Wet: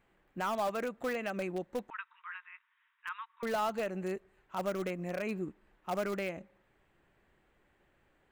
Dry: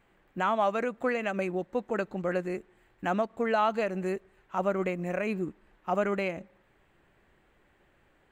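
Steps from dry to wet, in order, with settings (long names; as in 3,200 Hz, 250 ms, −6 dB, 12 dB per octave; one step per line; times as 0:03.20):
0:01.90–0:03.43: linear-phase brick-wall band-pass 900–3,900 Hz
in parallel at −12 dB: wrap-around overflow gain 22 dB
on the sum: level −7 dB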